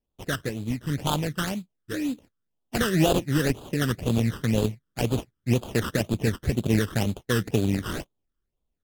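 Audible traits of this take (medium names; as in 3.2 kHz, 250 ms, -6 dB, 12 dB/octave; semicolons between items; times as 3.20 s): aliases and images of a low sample rate 2.2 kHz, jitter 20%; phasing stages 12, 2 Hz, lowest notch 720–1900 Hz; AAC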